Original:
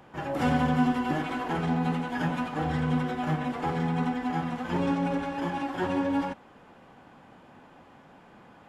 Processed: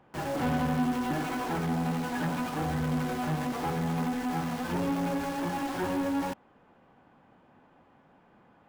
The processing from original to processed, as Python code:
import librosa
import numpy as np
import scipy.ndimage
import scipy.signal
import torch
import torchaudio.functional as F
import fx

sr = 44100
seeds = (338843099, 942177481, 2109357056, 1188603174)

p1 = fx.high_shelf(x, sr, hz=3800.0, db=-10.0)
p2 = fx.quant_companded(p1, sr, bits=2)
p3 = p1 + F.gain(torch.from_numpy(p2), -3.5).numpy()
y = F.gain(torch.from_numpy(p3), -7.0).numpy()